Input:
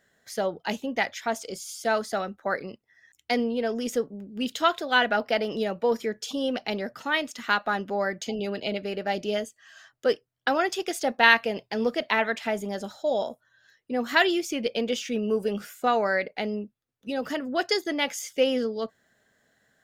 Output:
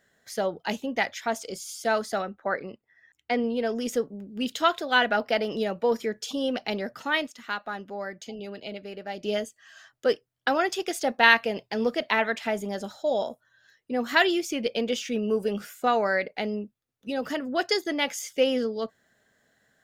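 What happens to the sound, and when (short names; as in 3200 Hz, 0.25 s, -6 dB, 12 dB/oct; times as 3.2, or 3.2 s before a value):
2.22–3.44 tone controls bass -2 dB, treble -14 dB
7.27–9.24 gain -7.5 dB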